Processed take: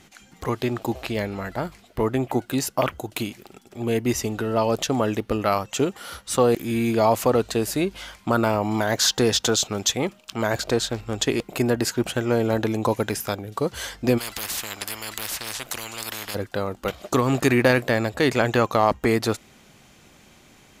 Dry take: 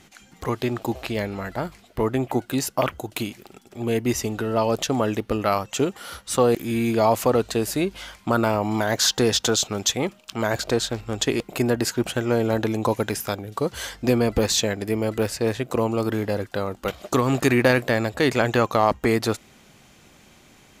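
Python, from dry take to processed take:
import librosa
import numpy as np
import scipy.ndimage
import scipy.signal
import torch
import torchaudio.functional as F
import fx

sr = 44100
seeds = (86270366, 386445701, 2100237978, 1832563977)

y = fx.spectral_comp(x, sr, ratio=10.0, at=(14.17, 16.34), fade=0.02)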